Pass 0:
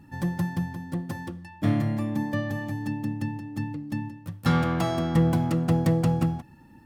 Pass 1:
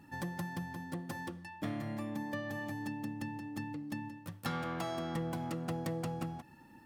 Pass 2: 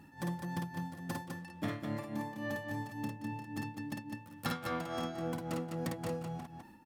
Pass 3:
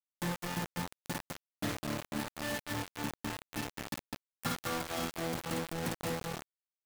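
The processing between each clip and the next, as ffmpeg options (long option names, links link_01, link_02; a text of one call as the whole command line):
ffmpeg -i in.wav -af "lowshelf=frequency=200:gain=-12,acompressor=threshold=-36dB:ratio=3,volume=-1dB" out.wav
ffmpeg -i in.wav -filter_complex "[0:a]tremolo=f=3.6:d=0.89,asplit=2[link_01][link_02];[link_02]aecho=0:1:52.48|204.1:0.708|0.562[link_03];[link_01][link_03]amix=inputs=2:normalize=0,volume=2dB" out.wav
ffmpeg -i in.wav -af "acrusher=bits=5:mix=0:aa=0.000001" out.wav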